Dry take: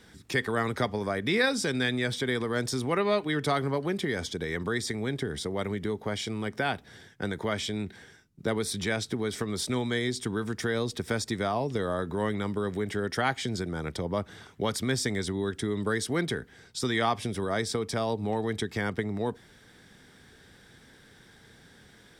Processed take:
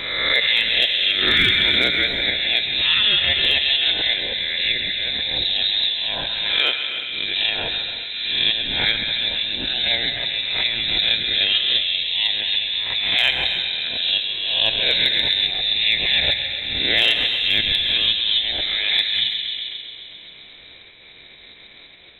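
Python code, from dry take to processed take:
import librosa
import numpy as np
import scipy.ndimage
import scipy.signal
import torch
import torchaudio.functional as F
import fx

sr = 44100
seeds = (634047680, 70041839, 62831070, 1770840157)

p1 = fx.spec_swells(x, sr, rise_s=0.61)
p2 = fx.hum_notches(p1, sr, base_hz=50, count=7)
p3 = fx.echo_bbd(p2, sr, ms=133, stages=2048, feedback_pct=72, wet_db=-6.0)
p4 = fx.level_steps(p3, sr, step_db=13)
p5 = p3 + (p4 * librosa.db_to_amplitude(-0.5))
p6 = fx.low_shelf(p5, sr, hz=200.0, db=11.0, at=(5.36, 5.9))
p7 = fx.freq_invert(p6, sr, carrier_hz=3900)
p8 = np.clip(p7, -10.0 ** (-9.5 / 20.0), 10.0 ** (-9.5 / 20.0))
p9 = fx.rev_gated(p8, sr, seeds[0], gate_ms=390, shape='flat', drr_db=8.0)
p10 = fx.pre_swell(p9, sr, db_per_s=36.0)
y = p10 * librosa.db_to_amplitude(1.5)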